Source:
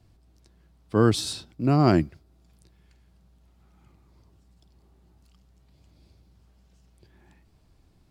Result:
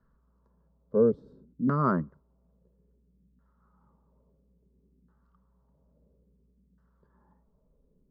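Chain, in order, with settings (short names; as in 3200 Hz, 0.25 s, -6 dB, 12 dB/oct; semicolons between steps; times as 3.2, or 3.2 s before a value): LFO low-pass saw down 0.59 Hz 260–1600 Hz; fixed phaser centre 490 Hz, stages 8; gain -4 dB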